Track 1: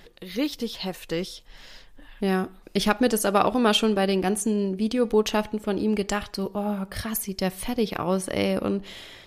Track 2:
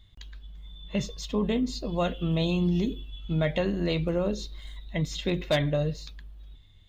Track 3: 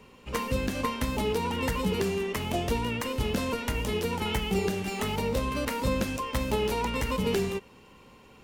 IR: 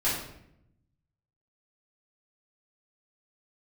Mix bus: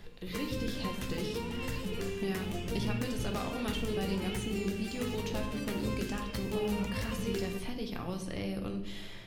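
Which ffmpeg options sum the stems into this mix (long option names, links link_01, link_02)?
-filter_complex "[0:a]acrossover=split=81|2300|6400[link_01][link_02][link_03][link_04];[link_01]acompressor=threshold=-48dB:ratio=4[link_05];[link_02]acompressor=threshold=-34dB:ratio=4[link_06];[link_03]acompressor=threshold=-41dB:ratio=4[link_07];[link_04]acompressor=threshold=-52dB:ratio=4[link_08];[link_05][link_06][link_07][link_08]amix=inputs=4:normalize=0,bass=frequency=250:gain=8,treble=frequency=4000:gain=0,deesser=0.7,volume=-8.5dB,asplit=2[link_09][link_10];[link_10]volume=-11dB[link_11];[1:a]asoftclip=type=hard:threshold=-31.5dB,volume=-16.5dB[link_12];[2:a]equalizer=frequency=840:width=1.4:gain=-8,flanger=delay=8.3:depth=1.5:regen=66:speed=0.66:shape=triangular,volume=-5.5dB,asplit=2[link_13][link_14];[link_14]volume=-15dB[link_15];[3:a]atrim=start_sample=2205[link_16];[link_11][link_15]amix=inputs=2:normalize=0[link_17];[link_17][link_16]afir=irnorm=-1:irlink=0[link_18];[link_09][link_12][link_13][link_18]amix=inputs=4:normalize=0"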